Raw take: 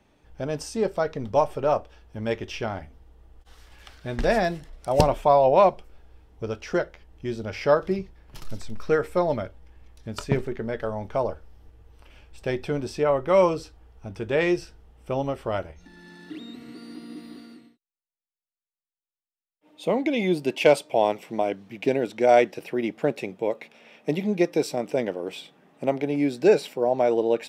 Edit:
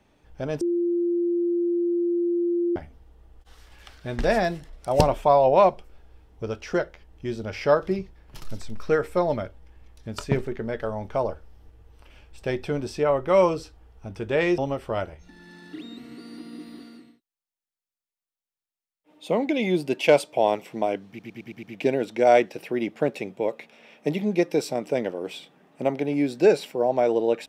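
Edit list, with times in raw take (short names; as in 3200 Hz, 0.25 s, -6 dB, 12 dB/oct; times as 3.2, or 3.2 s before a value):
0.61–2.76 bleep 346 Hz -20.5 dBFS
14.58–15.15 cut
21.65 stutter 0.11 s, 6 plays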